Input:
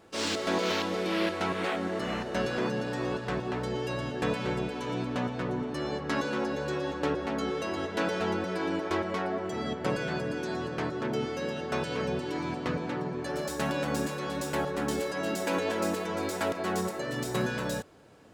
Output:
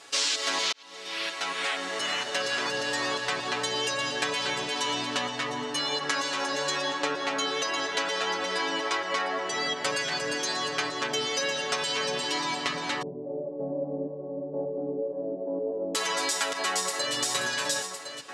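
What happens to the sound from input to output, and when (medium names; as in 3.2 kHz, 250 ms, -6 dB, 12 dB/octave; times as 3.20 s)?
0.72–3.78 s: fade in equal-power
5.31–6.01 s: comb of notches 190 Hz
6.81–9.76 s: treble shelf 5.9 kHz -7 dB
13.02–15.95 s: steep low-pass 580 Hz
16.69–17.14 s: echo throw 530 ms, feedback 65%, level -8.5 dB
whole clip: frequency weighting ITU-R 468; compression, threshold -32 dBFS; comb 7.1 ms, depth 88%; trim +5 dB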